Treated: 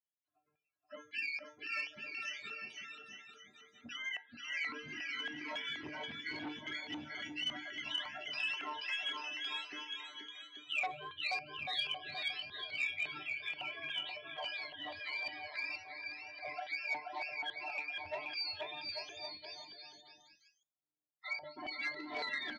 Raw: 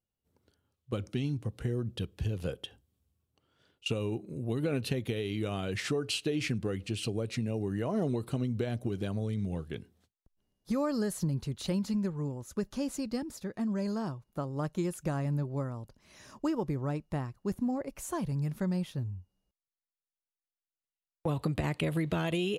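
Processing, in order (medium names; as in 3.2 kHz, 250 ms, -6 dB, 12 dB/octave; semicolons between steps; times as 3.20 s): spectrum inverted on a logarithmic axis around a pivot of 810 Hz; low-pass 3.8 kHz 12 dB/octave; comb 3 ms, depth 73%; dynamic bell 1.2 kHz, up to -8 dB, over -55 dBFS, Q 3.4; feedback comb 150 Hz, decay 0.25 s, harmonics all, mix 90%; de-hum 113.9 Hz, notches 22; loudest bins only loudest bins 32; LFO band-pass square 1.8 Hz 740–2500 Hz; on a send: bouncing-ball echo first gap 480 ms, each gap 0.75×, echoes 5; on the sum: transformer saturation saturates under 1.7 kHz; trim +13 dB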